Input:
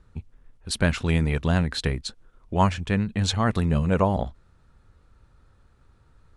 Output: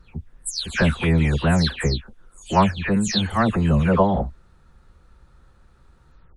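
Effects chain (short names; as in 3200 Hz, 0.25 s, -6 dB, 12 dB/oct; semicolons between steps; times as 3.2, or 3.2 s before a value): spectral delay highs early, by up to 0.252 s; gain +5 dB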